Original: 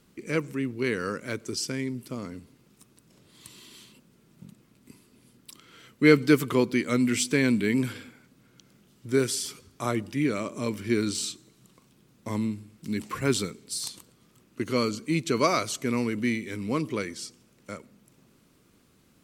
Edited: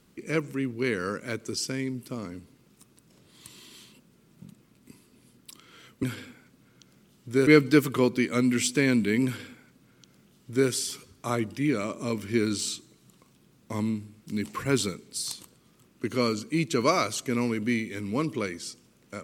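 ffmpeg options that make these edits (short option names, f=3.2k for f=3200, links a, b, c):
-filter_complex "[0:a]asplit=3[a][b][c];[a]atrim=end=6.032[d];[b]atrim=start=7.808:end=9.252[e];[c]atrim=start=6.028[f];[d][e]acrossfade=d=0.004:c1=hsin:c2=hsin[g];[g][f]acrossfade=d=0.004:c1=hsin:c2=hsin"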